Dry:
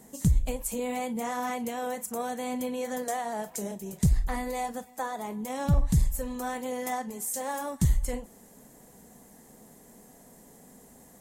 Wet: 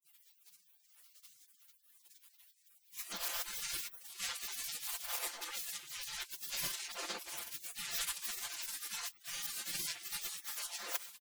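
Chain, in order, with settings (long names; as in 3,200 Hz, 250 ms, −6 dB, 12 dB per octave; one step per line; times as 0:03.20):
played backwards from end to start
in parallel at +1 dB: downward compressor 5 to 1, threshold −39 dBFS, peak gain reduction 19 dB
on the sum: frequency shifter −190 Hz
bass and treble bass −14 dB, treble −6 dB
echo through a band-pass that steps 272 ms, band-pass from 1,500 Hz, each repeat 0.7 octaves, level −12 dB
granular cloud 100 ms, grains 20 per second, pitch spread up and down by 12 semitones
four-comb reverb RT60 0.64 s, combs from 27 ms, DRR 17.5 dB
pitch-shifted copies added −12 semitones −10 dB, +4 semitones −16 dB, +7 semitones −4 dB
gate on every frequency bin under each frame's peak −30 dB weak
comb filter 5.8 ms, depth 78%
level +7.5 dB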